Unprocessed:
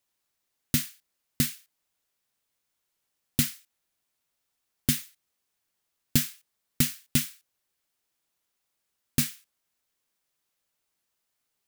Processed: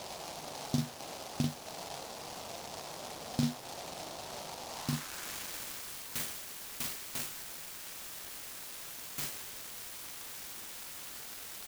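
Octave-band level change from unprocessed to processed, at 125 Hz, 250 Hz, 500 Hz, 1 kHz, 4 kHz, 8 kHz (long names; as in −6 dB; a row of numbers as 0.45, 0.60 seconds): −6.0, −5.5, +5.5, +11.5, −4.5, −6.5 decibels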